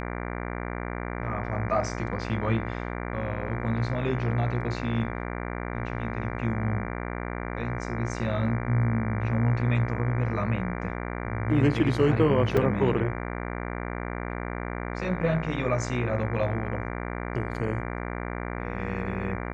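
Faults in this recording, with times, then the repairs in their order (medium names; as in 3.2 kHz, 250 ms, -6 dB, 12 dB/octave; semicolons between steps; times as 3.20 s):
buzz 60 Hz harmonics 39 -33 dBFS
12.57 s: dropout 4.3 ms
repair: de-hum 60 Hz, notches 39; interpolate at 12.57 s, 4.3 ms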